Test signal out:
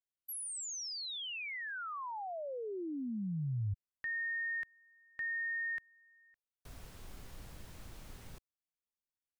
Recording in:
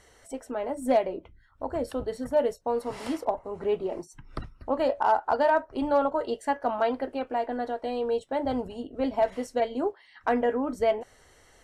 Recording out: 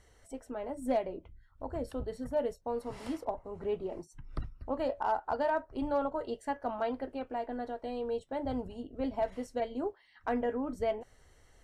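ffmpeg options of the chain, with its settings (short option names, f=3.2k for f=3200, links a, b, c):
-af "lowshelf=f=160:g=11,volume=-8.5dB"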